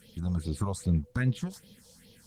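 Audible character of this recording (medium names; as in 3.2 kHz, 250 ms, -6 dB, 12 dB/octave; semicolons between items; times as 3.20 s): phasing stages 4, 2.5 Hz, lowest notch 290–1500 Hz; a quantiser's noise floor 12-bit, dither none; Opus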